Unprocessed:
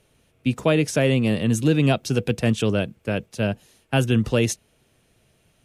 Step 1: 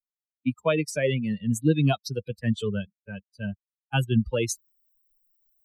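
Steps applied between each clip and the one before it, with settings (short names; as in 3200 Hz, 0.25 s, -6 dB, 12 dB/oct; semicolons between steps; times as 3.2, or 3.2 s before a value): per-bin expansion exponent 3; reverse; upward compressor, threshold -39 dBFS; reverse; gain +1 dB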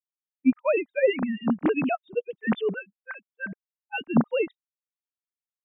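sine-wave speech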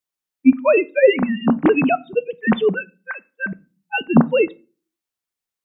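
reverb RT60 0.35 s, pre-delay 3 ms, DRR 14.5 dB; gain +8.5 dB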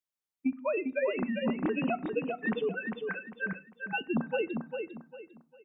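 compressor 6:1, threshold -19 dBFS, peak gain reduction 12.5 dB; on a send: feedback echo 0.4 s, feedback 30%, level -5.5 dB; on the sum: gain -8.5 dB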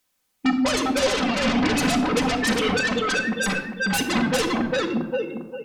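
in parallel at -7.5 dB: sine folder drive 19 dB, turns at -19 dBFS; on the sum: shoebox room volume 3200 m³, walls furnished, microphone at 2 m; gain +3 dB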